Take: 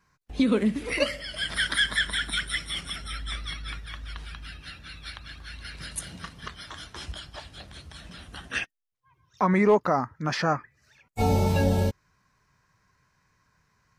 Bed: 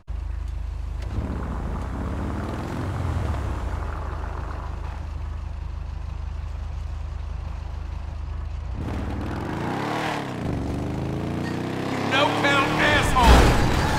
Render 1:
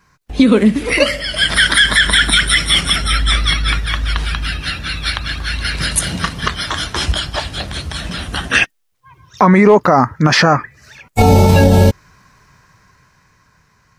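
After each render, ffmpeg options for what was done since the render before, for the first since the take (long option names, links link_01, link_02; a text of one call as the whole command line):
ffmpeg -i in.wav -af "dynaudnorm=framelen=360:gausssize=9:maxgain=8dB,alimiter=level_in=12.5dB:limit=-1dB:release=50:level=0:latency=1" out.wav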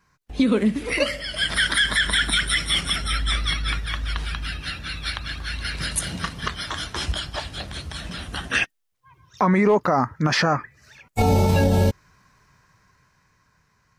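ffmpeg -i in.wav -af "volume=-9dB" out.wav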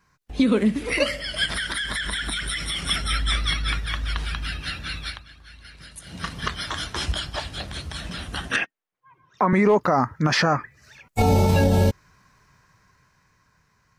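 ffmpeg -i in.wav -filter_complex "[0:a]asettb=1/sr,asplit=3[link_01][link_02][link_03];[link_01]atrim=end=1.454[link_04];[link_02]atrim=start=1.45:end=2.83,asetpts=PTS-STARTPTS,afade=type=in:duration=0.004:curve=qsin,afade=type=out:start_time=1.376:duration=0.004:curve=qsin,acompressor=threshold=-23dB:ratio=12:attack=3.2:release=140:knee=1:detection=peak[link_05];[link_03]atrim=start=2.826[link_06];[link_04][link_05]acrossfade=duration=0.004:curve1=hsin:curve2=qsin[link_07];[link_07][link_06]acrossfade=duration=0.004:curve1=qsin:curve2=hsin,asettb=1/sr,asplit=3[link_08][link_09][link_10];[link_08]atrim=end=8.564[link_11];[link_09]atrim=start=8.56:end=9.53,asetpts=PTS-STARTPTS,afade=type=in:duration=0.004:curve=qsin,afade=type=out:start_time=0.966:duration=0.004:curve=qsin,acrossover=split=160 2500:gain=0.1 1 0.2[link_12][link_13][link_14];[link_12][link_13][link_14]amix=inputs=3:normalize=0[link_15];[link_10]atrim=start=9.526[link_16];[link_11][link_15]acrossfade=duration=0.004:curve1=hsin:curve2=qsin[link_17];[link_17][link_16]acrossfade=duration=0.004:curve1=qsin:curve2=hsin,asplit=3[link_18][link_19][link_20];[link_18]atrim=end=5.25,asetpts=PTS-STARTPTS,afade=type=out:start_time=4.95:duration=0.3:silence=0.149624[link_21];[link_19]atrim=start=5.25:end=6.04,asetpts=PTS-STARTPTS,volume=-16.5dB[link_22];[link_20]atrim=start=6.04,asetpts=PTS-STARTPTS,afade=type=in:duration=0.3:silence=0.149624[link_23];[link_21][link_22][link_23]concat=n=3:v=0:a=1" out.wav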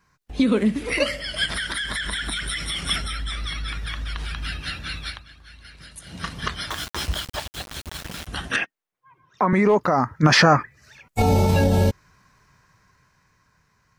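ffmpeg -i in.wav -filter_complex "[0:a]asettb=1/sr,asplit=3[link_01][link_02][link_03];[link_01]atrim=end=3.004[link_04];[link_02]atrim=start=3:end=4.4,asetpts=PTS-STARTPTS,afade=type=in:duration=0.004:curve=qsin,afade=type=out:start_time=1.396:duration=0.004:curve=qsin,acompressor=threshold=-25dB:ratio=6:attack=3.2:release=140:knee=1:detection=peak[link_05];[link_03]atrim=start=4.396[link_06];[link_04][link_05]acrossfade=duration=0.004:curve1=hsin:curve2=qsin[link_07];[link_07][link_06]acrossfade=duration=0.004:curve1=qsin:curve2=hsin,asettb=1/sr,asplit=3[link_08][link_09][link_10];[link_08]atrim=end=6.704[link_11];[link_09]atrim=start=6.7:end=8.27,asetpts=PTS-STARTPTS,afade=type=in:duration=0.004:curve=qsin,afade=type=out:start_time=1.566:duration=0.004:curve=qsin,aeval=exprs='val(0)*gte(abs(val(0)),0.0299)':channel_layout=same[link_12];[link_10]atrim=start=8.266[link_13];[link_11][link_12]acrossfade=duration=0.004:curve1=hsin:curve2=qsin[link_14];[link_14][link_13]acrossfade=duration=0.004:curve1=qsin:curve2=hsin,asplit=3[link_15][link_16][link_17];[link_15]atrim=end=10.232[link_18];[link_16]atrim=start=10.228:end=10.632,asetpts=PTS-STARTPTS,volume=5.5dB[link_19];[link_17]atrim=start=10.628[link_20];[link_18][link_19]acrossfade=duration=0.004:curve1=hsin:curve2=hsin[link_21];[link_21][link_20]acrossfade=duration=0.004:curve1=hsin:curve2=hsin" out.wav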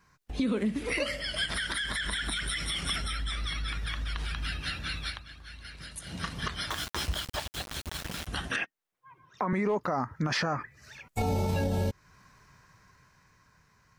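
ffmpeg -i in.wav -af "alimiter=limit=-14dB:level=0:latency=1:release=80,acompressor=threshold=-37dB:ratio=1.5" out.wav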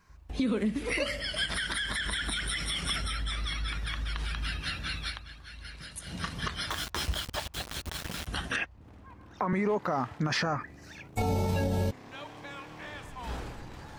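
ffmpeg -i in.wav -i bed.wav -filter_complex "[1:a]volume=-24dB[link_01];[0:a][link_01]amix=inputs=2:normalize=0" out.wav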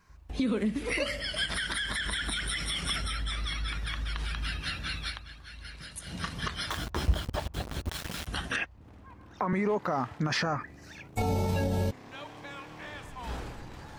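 ffmpeg -i in.wav -filter_complex "[0:a]asettb=1/sr,asplit=3[link_01][link_02][link_03];[link_01]atrim=end=6.774[link_04];[link_02]atrim=start=6.77:end=7.89,asetpts=PTS-STARTPTS,afade=type=in:duration=0.004:curve=qsin,afade=type=out:start_time=1.116:duration=0.004:curve=qsin,tiltshelf=frequency=1100:gain=7[link_05];[link_03]atrim=start=7.886[link_06];[link_04][link_05]acrossfade=duration=0.004:curve1=hsin:curve2=qsin[link_07];[link_07][link_06]acrossfade=duration=0.004:curve1=qsin:curve2=hsin" out.wav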